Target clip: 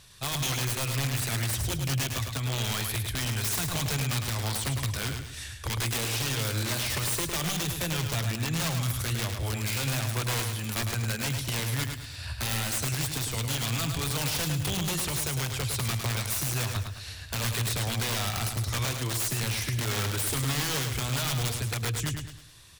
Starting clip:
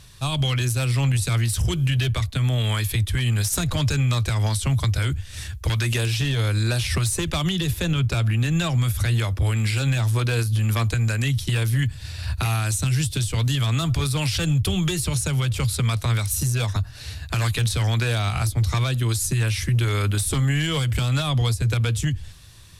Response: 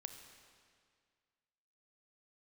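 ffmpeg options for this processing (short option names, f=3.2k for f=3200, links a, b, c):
-af "lowshelf=f=250:g=-8.5,aeval=exprs='(mod(10*val(0)+1,2)-1)/10':c=same,aecho=1:1:106|212|318|424|530:0.501|0.19|0.0724|0.0275|0.0105,volume=-3.5dB"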